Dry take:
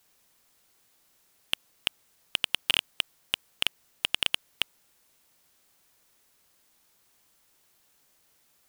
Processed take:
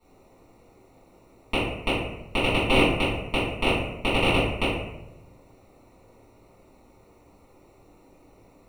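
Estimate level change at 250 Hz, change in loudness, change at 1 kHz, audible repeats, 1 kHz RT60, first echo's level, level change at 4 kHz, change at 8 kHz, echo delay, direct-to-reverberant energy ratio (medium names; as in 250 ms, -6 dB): +25.5 dB, +5.5 dB, +16.5 dB, no echo, 0.80 s, no echo, -1.5 dB, -4.0 dB, no echo, -15.0 dB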